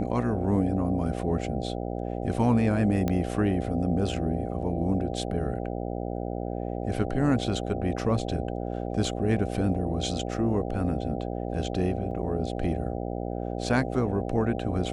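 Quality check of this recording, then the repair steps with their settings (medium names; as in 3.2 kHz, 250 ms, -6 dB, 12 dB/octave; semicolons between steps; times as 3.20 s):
buzz 60 Hz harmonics 13 -32 dBFS
3.08 s: pop -15 dBFS
12.11 s: dropout 2.9 ms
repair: de-click; de-hum 60 Hz, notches 13; interpolate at 12.11 s, 2.9 ms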